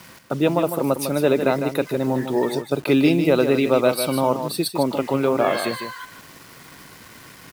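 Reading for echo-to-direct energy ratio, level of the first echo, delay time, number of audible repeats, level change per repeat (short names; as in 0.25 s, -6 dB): -8.5 dB, -8.5 dB, 0.153 s, 1, no steady repeat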